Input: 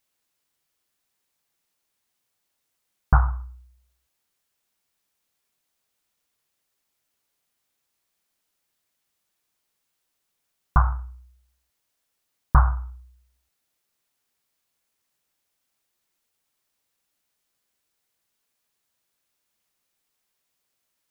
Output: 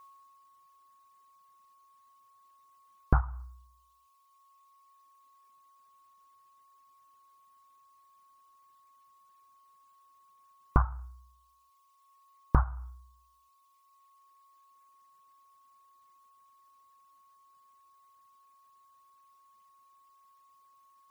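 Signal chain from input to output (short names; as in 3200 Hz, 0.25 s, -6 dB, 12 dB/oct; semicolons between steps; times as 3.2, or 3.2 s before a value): whine 1100 Hz -57 dBFS; reverb removal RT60 1.9 s; compressor 10:1, threshold -24 dBFS, peak gain reduction 14 dB; gain +4.5 dB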